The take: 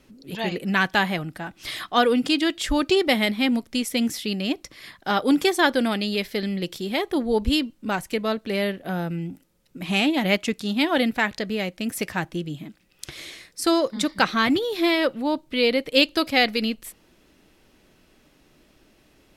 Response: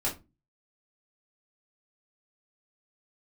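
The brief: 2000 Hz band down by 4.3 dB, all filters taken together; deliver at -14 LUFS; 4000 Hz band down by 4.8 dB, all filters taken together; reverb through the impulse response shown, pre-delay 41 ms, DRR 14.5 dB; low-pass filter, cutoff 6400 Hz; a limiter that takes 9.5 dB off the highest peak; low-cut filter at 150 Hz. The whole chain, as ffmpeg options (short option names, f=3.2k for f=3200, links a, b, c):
-filter_complex "[0:a]highpass=150,lowpass=6.4k,equalizer=f=2k:t=o:g=-4.5,equalizer=f=4k:t=o:g=-4,alimiter=limit=-16dB:level=0:latency=1,asplit=2[a][b];[1:a]atrim=start_sample=2205,adelay=41[c];[b][c]afir=irnorm=-1:irlink=0,volume=-21dB[d];[a][d]amix=inputs=2:normalize=0,volume=13dB"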